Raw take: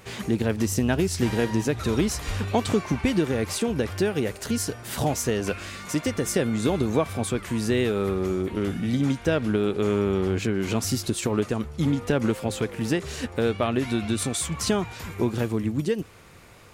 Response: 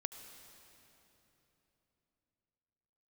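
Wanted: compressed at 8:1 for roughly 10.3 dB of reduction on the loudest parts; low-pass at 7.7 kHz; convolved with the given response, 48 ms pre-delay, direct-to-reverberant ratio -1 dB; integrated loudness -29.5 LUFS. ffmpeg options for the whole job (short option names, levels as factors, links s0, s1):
-filter_complex "[0:a]lowpass=7700,acompressor=threshold=0.0355:ratio=8,asplit=2[s0][s1];[1:a]atrim=start_sample=2205,adelay=48[s2];[s1][s2]afir=irnorm=-1:irlink=0,volume=1.33[s3];[s0][s3]amix=inputs=2:normalize=0,volume=1.12"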